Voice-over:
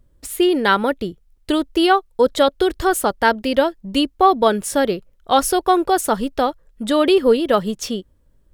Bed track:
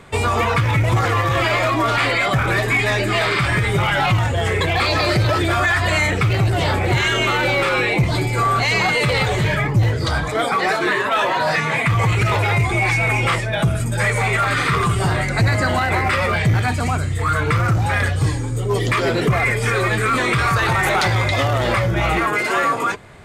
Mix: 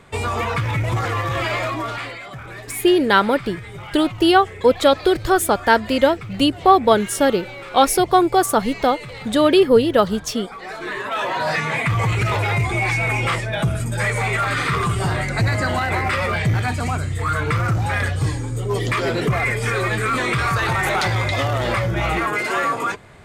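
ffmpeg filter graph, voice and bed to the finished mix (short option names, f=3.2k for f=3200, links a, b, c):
-filter_complex "[0:a]adelay=2450,volume=1dB[a];[1:a]volume=10dB,afade=t=out:st=1.58:d=0.62:silence=0.237137,afade=t=in:st=10.6:d=0.9:silence=0.188365[b];[a][b]amix=inputs=2:normalize=0"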